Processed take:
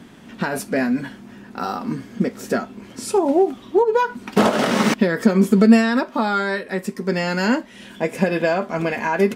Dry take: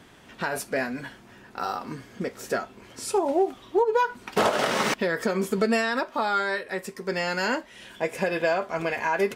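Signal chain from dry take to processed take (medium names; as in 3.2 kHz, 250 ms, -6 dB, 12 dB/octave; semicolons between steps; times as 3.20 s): peaking EQ 220 Hz +12.5 dB 1 oct; trim +3 dB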